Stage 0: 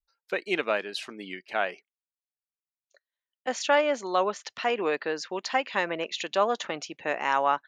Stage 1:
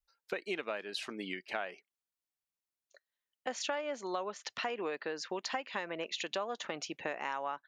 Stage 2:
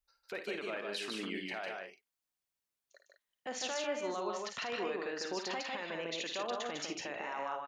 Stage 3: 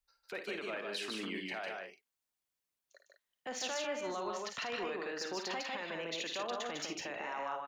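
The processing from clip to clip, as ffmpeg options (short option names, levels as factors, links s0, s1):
-af "acompressor=threshold=0.02:ratio=6"
-filter_complex "[0:a]alimiter=level_in=2:limit=0.0631:level=0:latency=1:release=11,volume=0.501,asplit=2[s0][s1];[s1]aecho=0:1:54|78|152|194:0.355|0.158|0.708|0.355[s2];[s0][s2]amix=inputs=2:normalize=0"
-filter_complex "[0:a]acrossover=split=270|660|4800[s0][s1][s2][s3];[s1]asoftclip=type=tanh:threshold=0.01[s4];[s3]acrusher=bits=5:mode=log:mix=0:aa=0.000001[s5];[s0][s4][s2][s5]amix=inputs=4:normalize=0"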